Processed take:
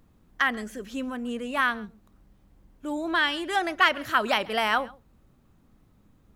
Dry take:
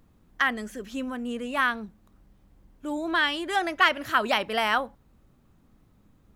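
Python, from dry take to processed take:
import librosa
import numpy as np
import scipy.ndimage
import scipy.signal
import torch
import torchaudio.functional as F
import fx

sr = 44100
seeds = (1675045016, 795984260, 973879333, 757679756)

y = x + 10.0 ** (-23.0 / 20.0) * np.pad(x, (int(134 * sr / 1000.0), 0))[:len(x)]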